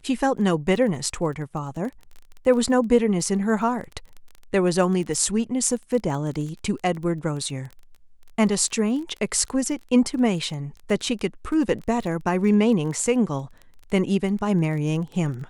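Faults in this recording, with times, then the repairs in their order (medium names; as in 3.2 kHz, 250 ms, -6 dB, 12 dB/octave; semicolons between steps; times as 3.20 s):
crackle 20 per s -31 dBFS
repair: de-click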